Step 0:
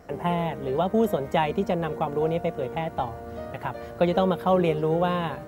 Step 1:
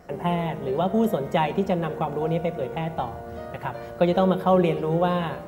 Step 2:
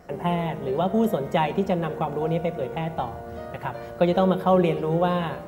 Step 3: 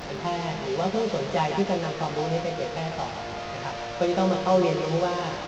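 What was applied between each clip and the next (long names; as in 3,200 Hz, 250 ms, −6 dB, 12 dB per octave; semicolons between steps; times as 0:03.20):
rectangular room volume 3,900 cubic metres, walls furnished, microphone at 1 metre
no processing that can be heard
linear delta modulator 32 kbit/s, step −26.5 dBFS; double-tracking delay 20 ms −3 dB; feedback echo with a high-pass in the loop 153 ms, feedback 60%, high-pass 420 Hz, level −6.5 dB; level −4.5 dB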